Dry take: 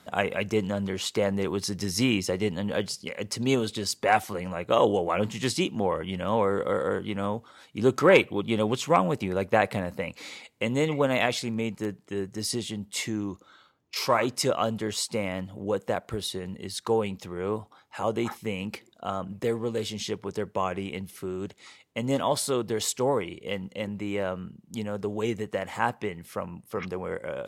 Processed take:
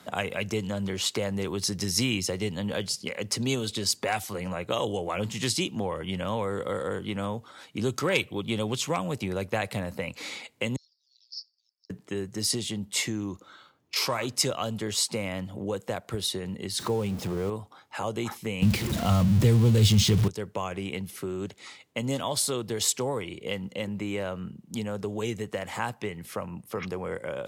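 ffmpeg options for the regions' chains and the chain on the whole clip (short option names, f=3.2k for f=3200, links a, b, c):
-filter_complex "[0:a]asettb=1/sr,asplit=3[a][b][c];[a]atrim=end=10.764[d];[b]atrim=start=10.76:end=11.9,asetpts=PTS-STARTPTS,afade=t=in:d=0.004:c=qsin,afade=t=out:st=1.136:d=0.004:c=qsin,agate=range=-33dB:threshold=-28dB:ratio=3:release=100:detection=peak,asuperpass=centerf=5000:order=8:qfactor=4.5[e];[c]atrim=start=11.896[f];[d][e]acrossfade=d=0.004:c1=hsin:c2=qsin[g];[g][f]acrossfade=d=0.004:c1=qsin:c2=hsin,asettb=1/sr,asplit=3[h][i][j];[h]atrim=end=16.794[k];[i]atrim=start=16.79:end=17.5,asetpts=PTS-STARTPTS,afade=t=in:d=0.004:c=qsin,afade=t=out:st=0.706:d=0.004:c=qsin,aeval=exprs='val(0)+0.5*0.0168*sgn(val(0))':c=same,tiltshelf=f=1.1k:g=5[l];[j]atrim=start=17.496[m];[k][l]acrossfade=d=0.004:c1=hsin:c2=qsin[n];[n][m]acrossfade=d=0.004:c1=qsin:c2=hsin,asettb=1/sr,asplit=3[o][p][q];[o]atrim=end=18.624[r];[p]atrim=start=18.62:end=20.28,asetpts=PTS-STARTPTS,afade=t=in:d=0.004:c=qsin,afade=t=out:st=1.656:d=0.004:c=qsin,aeval=exprs='val(0)+0.5*0.02*sgn(val(0))':c=same,bass=f=250:g=13,treble=f=4k:g=-5,acontrast=87[s];[q]atrim=start=20.276[t];[r][s]acrossfade=d=0.004:c1=hsin:c2=qsin[u];[u][t]acrossfade=d=0.004:c1=qsin:c2=hsin,highpass=74,acrossover=split=120|3000[v][w][x];[w]acompressor=threshold=-36dB:ratio=2.5[y];[v][y][x]amix=inputs=3:normalize=0,volume=4dB"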